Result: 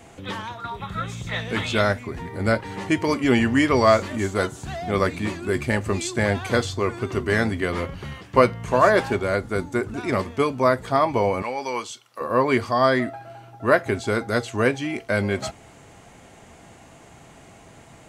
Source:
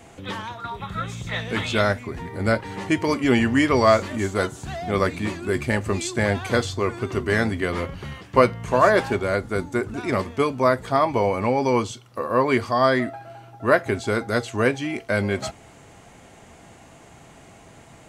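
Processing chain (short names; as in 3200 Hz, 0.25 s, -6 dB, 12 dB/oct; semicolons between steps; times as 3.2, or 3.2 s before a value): 11.42–12.21 HPF 1200 Hz 6 dB/oct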